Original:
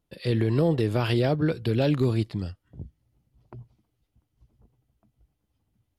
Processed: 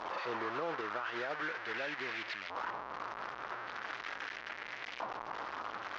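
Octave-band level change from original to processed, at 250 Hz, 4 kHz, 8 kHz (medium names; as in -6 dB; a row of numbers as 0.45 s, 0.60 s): -21.0 dB, -6.5 dB, no reading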